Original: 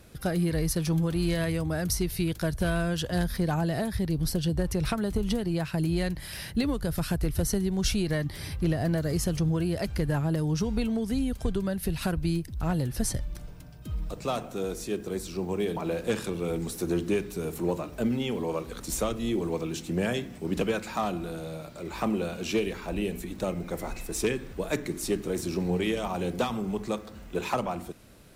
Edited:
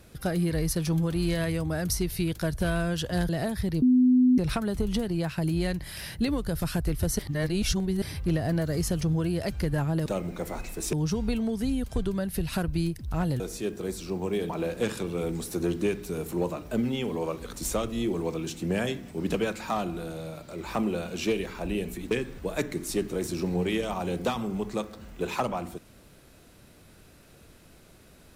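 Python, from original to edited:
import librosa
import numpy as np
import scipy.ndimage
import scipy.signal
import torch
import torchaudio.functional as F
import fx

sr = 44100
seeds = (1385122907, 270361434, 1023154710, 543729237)

y = fx.edit(x, sr, fx.cut(start_s=3.29, length_s=0.36),
    fx.bleep(start_s=4.18, length_s=0.56, hz=252.0, db=-16.0),
    fx.reverse_span(start_s=7.55, length_s=0.83),
    fx.cut(start_s=12.89, length_s=1.78),
    fx.move(start_s=23.38, length_s=0.87, to_s=10.42), tone=tone)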